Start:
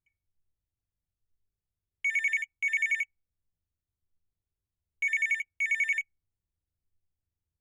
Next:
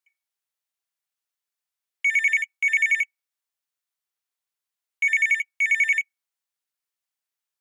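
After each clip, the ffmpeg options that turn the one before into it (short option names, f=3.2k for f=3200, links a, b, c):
-af "highpass=930,volume=7.5dB"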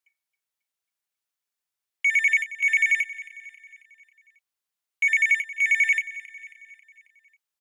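-af "aecho=1:1:271|542|813|1084|1355:0.15|0.0793|0.042|0.0223|0.0118"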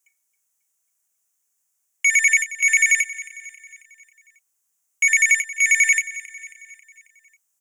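-af "highshelf=f=5.4k:t=q:w=3:g=8.5,volume=5dB"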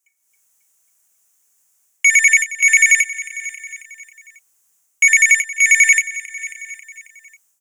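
-af "dynaudnorm=f=170:g=3:m=12dB,volume=-1dB"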